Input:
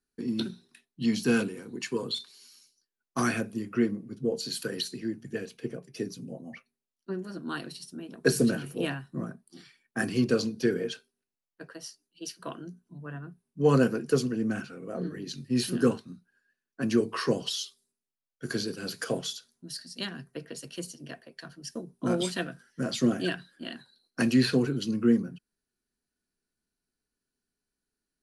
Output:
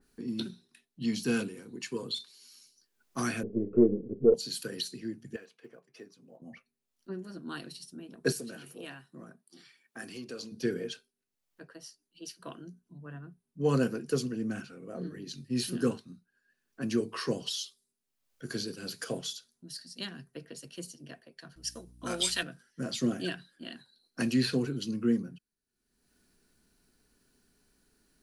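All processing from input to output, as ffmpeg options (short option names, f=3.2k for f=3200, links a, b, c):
-filter_complex "[0:a]asettb=1/sr,asplit=3[a][b][c];[a]atrim=end=3.434[d];[b]atrim=start=3.43:end=4.34,asetpts=PTS-STARTPTS,afade=t=in:d=0.004:c=qsin,afade=t=out:st=0.906:d=0.004:c=qsin,aeval=exprs='if(lt(val(0),0),0.447*val(0),val(0))':c=same,lowpass=f=430:t=q:w=5.1,acontrast=29[e];[c]atrim=start=4.336[f];[d][e]acrossfade=d=0.004:c1=hsin:c2=qsin[g];[g][f]acrossfade=d=0.004:c1=qsin:c2=hsin,asettb=1/sr,asplit=3[h][i][j];[h]atrim=end=5.364[k];[i]atrim=start=5.36:end=6.42,asetpts=PTS-STARTPTS,afade=t=in:d=0.004:c=qsin,afade=t=out:st=1.056:d=0.004:c=qsin,bandpass=f=1.1k:t=q:w=1.2,aemphasis=mode=production:type=cd,acrusher=bits=9:mode=log:mix=0:aa=0.000001[l];[j]atrim=start=6.416[m];[k][l]acrossfade=d=0.004:c1=hsin:c2=qsin[n];[n][m]acrossfade=d=0.004:c1=qsin:c2=hsin,asettb=1/sr,asplit=3[o][p][q];[o]atrim=end=8.324[r];[p]atrim=start=8.32:end=10.52,asetpts=PTS-STARTPTS,afade=t=in:d=0.004:c=qsin,afade=t=out:st=2.196:d=0.004:c=qsin,acompressor=threshold=-35dB:ratio=2:attack=3.2:release=140:knee=1:detection=peak,highpass=f=400:p=1[s];[q]atrim=start=10.516[t];[r][s]acrossfade=d=0.004:c1=hsin:c2=qsin[u];[u][t]acrossfade=d=0.004:c1=qsin:c2=hsin,asettb=1/sr,asplit=3[v][w][x];[v]atrim=end=21.564[y];[w]atrim=start=21.56:end=22.43,asetpts=PTS-STARTPTS,afade=t=in:d=0.004:c=qsin,afade=t=out:st=0.866:d=0.004:c=qsin,tiltshelf=f=650:g=-9,aeval=exprs='val(0)+0.00282*(sin(2*PI*60*n/s)+sin(2*PI*2*60*n/s)/2+sin(2*PI*3*60*n/s)/3+sin(2*PI*4*60*n/s)/4+sin(2*PI*5*60*n/s)/5)':c=same[z];[x]atrim=start=22.426[aa];[y][z]acrossfade=d=0.004:c1=hsin:c2=qsin[ab];[ab][aa]acrossfade=d=0.004:c1=qsin:c2=hsin,lowshelf=f=500:g=3,acompressor=mode=upward:threshold=-43dB:ratio=2.5,adynamicequalizer=threshold=0.00562:dfrequency=2200:dqfactor=0.7:tfrequency=2200:tqfactor=0.7:attack=5:release=100:ratio=0.375:range=2.5:mode=boostabove:tftype=highshelf,volume=-7dB"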